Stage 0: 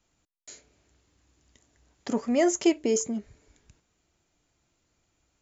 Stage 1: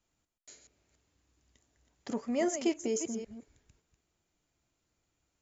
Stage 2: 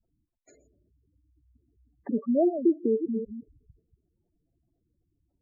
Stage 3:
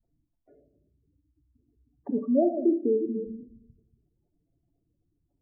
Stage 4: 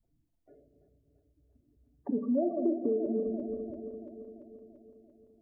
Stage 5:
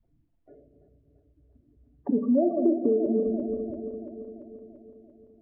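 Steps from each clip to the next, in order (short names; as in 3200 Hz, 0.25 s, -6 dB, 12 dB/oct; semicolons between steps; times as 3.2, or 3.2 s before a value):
reverse delay 0.191 s, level -9 dB; gain -7.5 dB
LPF 1200 Hz 6 dB/oct; spectral gate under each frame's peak -10 dB strong; gain +8.5 dB
LPF 1100 Hz 24 dB/oct; on a send at -8.5 dB: reverb RT60 0.60 s, pre-delay 7 ms
regenerating reverse delay 0.17 s, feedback 76%, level -12 dB; compressor 3:1, threshold -27 dBFS, peak gain reduction 7.5 dB
air absorption 400 m; gain +7 dB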